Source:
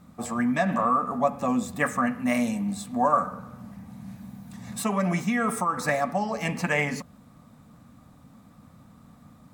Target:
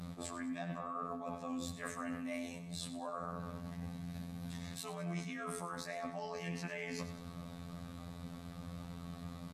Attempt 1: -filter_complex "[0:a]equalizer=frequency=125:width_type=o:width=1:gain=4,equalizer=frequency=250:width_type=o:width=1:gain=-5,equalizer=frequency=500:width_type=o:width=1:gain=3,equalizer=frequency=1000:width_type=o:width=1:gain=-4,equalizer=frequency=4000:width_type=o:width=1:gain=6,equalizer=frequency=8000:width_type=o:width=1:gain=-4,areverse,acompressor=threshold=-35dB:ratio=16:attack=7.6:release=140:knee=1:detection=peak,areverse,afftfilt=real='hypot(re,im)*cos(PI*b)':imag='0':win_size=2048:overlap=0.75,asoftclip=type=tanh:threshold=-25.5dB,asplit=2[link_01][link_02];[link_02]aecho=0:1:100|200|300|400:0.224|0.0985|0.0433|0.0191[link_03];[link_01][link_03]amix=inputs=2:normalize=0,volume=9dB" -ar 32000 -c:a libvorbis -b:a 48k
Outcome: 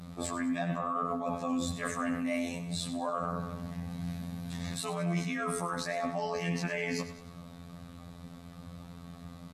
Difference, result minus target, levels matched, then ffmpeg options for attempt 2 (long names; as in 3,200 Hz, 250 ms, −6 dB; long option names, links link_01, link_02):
downward compressor: peak gain reduction −9.5 dB
-filter_complex "[0:a]equalizer=frequency=125:width_type=o:width=1:gain=4,equalizer=frequency=250:width_type=o:width=1:gain=-5,equalizer=frequency=500:width_type=o:width=1:gain=3,equalizer=frequency=1000:width_type=o:width=1:gain=-4,equalizer=frequency=4000:width_type=o:width=1:gain=6,equalizer=frequency=8000:width_type=o:width=1:gain=-4,areverse,acompressor=threshold=-45dB:ratio=16:attack=7.6:release=140:knee=1:detection=peak,areverse,afftfilt=real='hypot(re,im)*cos(PI*b)':imag='0':win_size=2048:overlap=0.75,asoftclip=type=tanh:threshold=-25.5dB,asplit=2[link_01][link_02];[link_02]aecho=0:1:100|200|300|400:0.224|0.0985|0.0433|0.0191[link_03];[link_01][link_03]amix=inputs=2:normalize=0,volume=9dB" -ar 32000 -c:a libvorbis -b:a 48k